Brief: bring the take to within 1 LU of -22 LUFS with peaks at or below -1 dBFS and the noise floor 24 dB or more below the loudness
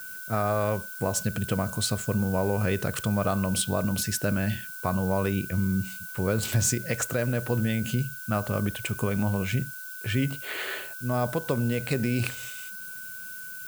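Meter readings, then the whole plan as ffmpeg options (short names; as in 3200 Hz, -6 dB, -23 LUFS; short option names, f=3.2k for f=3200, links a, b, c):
steady tone 1500 Hz; tone level -40 dBFS; noise floor -39 dBFS; noise floor target -52 dBFS; loudness -28.0 LUFS; peak -12.0 dBFS; loudness target -22.0 LUFS
-> -af "bandreject=f=1.5k:w=30"
-af "afftdn=nr=13:nf=-39"
-af "volume=6dB"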